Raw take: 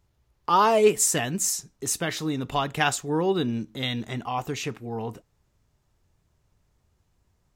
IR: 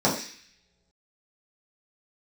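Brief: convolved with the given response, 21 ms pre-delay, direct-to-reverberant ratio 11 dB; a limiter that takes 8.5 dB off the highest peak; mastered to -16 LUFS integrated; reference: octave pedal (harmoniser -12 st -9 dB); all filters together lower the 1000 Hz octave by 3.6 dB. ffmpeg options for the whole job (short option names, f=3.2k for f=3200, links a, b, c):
-filter_complex "[0:a]equalizer=f=1k:t=o:g=-4.5,alimiter=limit=-17.5dB:level=0:latency=1,asplit=2[a][b];[1:a]atrim=start_sample=2205,adelay=21[c];[b][c]afir=irnorm=-1:irlink=0,volume=-27dB[d];[a][d]amix=inputs=2:normalize=0,asplit=2[e][f];[f]asetrate=22050,aresample=44100,atempo=2,volume=-9dB[g];[e][g]amix=inputs=2:normalize=0,volume=11.5dB"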